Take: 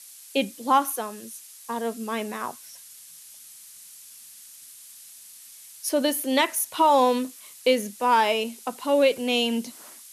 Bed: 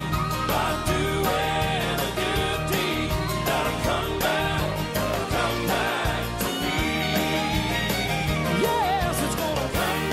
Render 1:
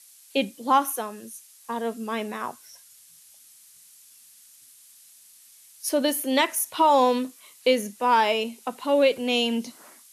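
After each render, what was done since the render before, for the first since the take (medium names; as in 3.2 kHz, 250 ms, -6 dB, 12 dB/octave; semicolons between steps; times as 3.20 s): noise print and reduce 6 dB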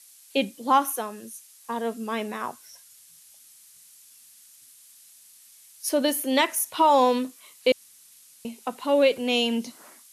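7.72–8.45 s: room tone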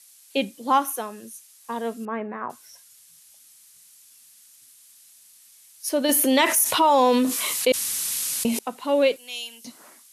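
2.05–2.50 s: low-pass 1.9 kHz 24 dB/octave; 6.09–8.59 s: level flattener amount 70%; 9.16–9.65 s: differentiator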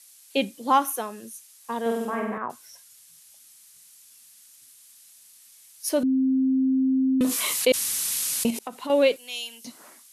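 1.81–2.38 s: flutter echo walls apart 8.2 m, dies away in 0.97 s; 6.03–7.21 s: bleep 263 Hz -18.5 dBFS; 8.50–8.90 s: compression, threshold -28 dBFS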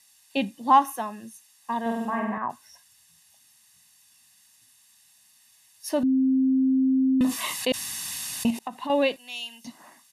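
treble shelf 5 kHz -11 dB; comb 1.1 ms, depth 65%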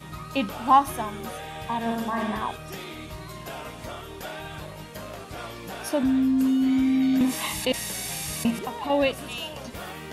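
add bed -13 dB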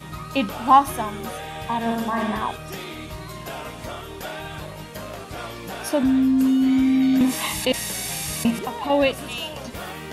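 trim +3.5 dB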